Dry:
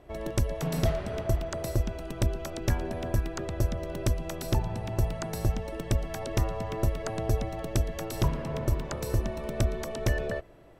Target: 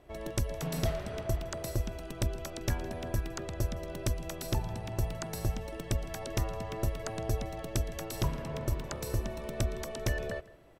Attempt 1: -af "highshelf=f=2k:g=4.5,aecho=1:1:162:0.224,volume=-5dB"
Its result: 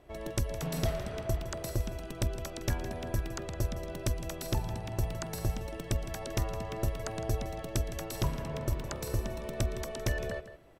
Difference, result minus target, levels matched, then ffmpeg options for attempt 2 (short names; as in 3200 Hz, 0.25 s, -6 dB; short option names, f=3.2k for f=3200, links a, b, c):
echo-to-direct +7.5 dB
-af "highshelf=f=2k:g=4.5,aecho=1:1:162:0.0944,volume=-5dB"